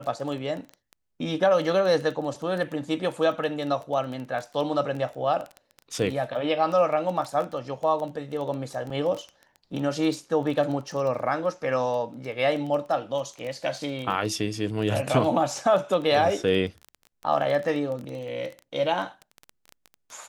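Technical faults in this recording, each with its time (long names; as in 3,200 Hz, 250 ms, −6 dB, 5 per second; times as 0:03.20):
surface crackle 14 per second −30 dBFS
0:08.90: drop-out 4.3 ms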